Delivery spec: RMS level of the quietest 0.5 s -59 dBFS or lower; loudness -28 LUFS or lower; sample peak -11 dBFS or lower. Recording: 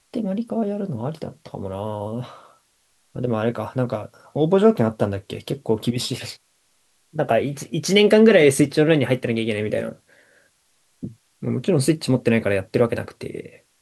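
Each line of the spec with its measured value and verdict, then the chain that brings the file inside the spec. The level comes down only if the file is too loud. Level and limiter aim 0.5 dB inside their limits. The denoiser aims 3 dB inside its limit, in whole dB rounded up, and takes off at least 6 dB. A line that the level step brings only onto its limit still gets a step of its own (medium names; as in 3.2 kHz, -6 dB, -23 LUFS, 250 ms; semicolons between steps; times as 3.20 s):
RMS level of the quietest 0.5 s -64 dBFS: pass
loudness -21.0 LUFS: fail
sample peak -3.0 dBFS: fail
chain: trim -7.5 dB; peak limiter -11.5 dBFS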